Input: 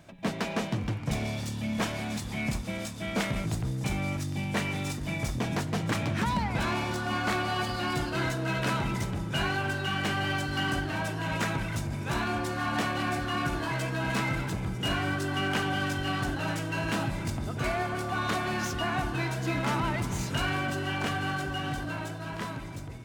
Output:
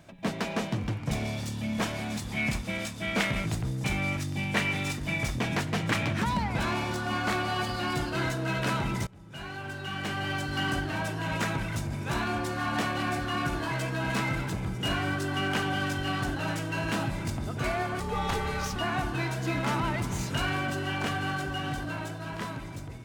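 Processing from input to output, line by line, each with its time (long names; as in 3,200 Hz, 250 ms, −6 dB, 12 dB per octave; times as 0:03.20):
0:02.34–0:06.13: dynamic equaliser 2,300 Hz, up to +6 dB, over −46 dBFS, Q 0.89
0:09.07–0:10.64: fade in, from −24 dB
0:18.00–0:18.76: frequency shifter −290 Hz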